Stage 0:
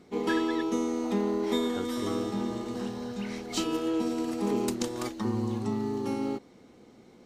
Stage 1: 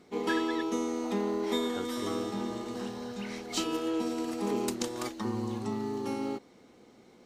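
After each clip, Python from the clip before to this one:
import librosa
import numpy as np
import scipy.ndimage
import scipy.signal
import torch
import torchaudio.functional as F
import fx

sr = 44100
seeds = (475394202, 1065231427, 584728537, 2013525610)

y = fx.low_shelf(x, sr, hz=300.0, db=-6.0)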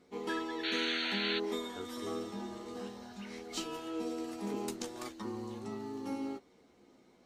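y = fx.spec_paint(x, sr, seeds[0], shape='noise', start_s=0.63, length_s=0.76, low_hz=1300.0, high_hz=4500.0, level_db=-29.0)
y = fx.chorus_voices(y, sr, voices=6, hz=0.3, base_ms=13, depth_ms=2.3, mix_pct=35)
y = y * 10.0 ** (-4.0 / 20.0)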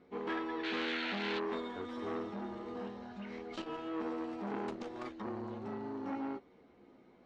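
y = scipy.signal.sosfilt(scipy.signal.butter(2, 2500.0, 'lowpass', fs=sr, output='sos'), x)
y = fx.transformer_sat(y, sr, knee_hz=1300.0)
y = y * 10.0 ** (2.0 / 20.0)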